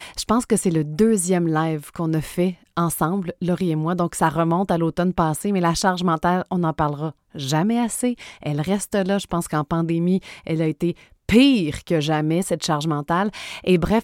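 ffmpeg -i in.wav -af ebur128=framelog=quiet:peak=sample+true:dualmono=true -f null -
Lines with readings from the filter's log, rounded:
Integrated loudness:
  I:         -18.5 LUFS
  Threshold: -28.5 LUFS
Loudness range:
  LRA:         2.5 LU
  Threshold: -38.6 LUFS
  LRA low:   -20.1 LUFS
  LRA high:  -17.6 LUFS
Sample peak:
  Peak:       -3.7 dBFS
True peak:
  Peak:       -3.7 dBFS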